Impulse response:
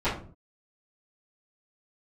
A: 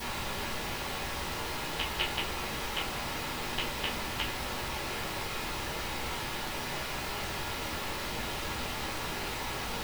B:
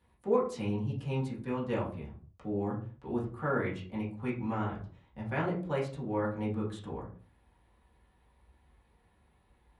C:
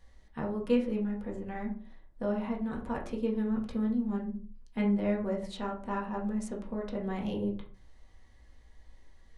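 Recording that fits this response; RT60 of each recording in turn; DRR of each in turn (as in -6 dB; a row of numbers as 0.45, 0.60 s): A; 0.45, 0.45, 0.45 s; -17.5, -7.5, -2.5 dB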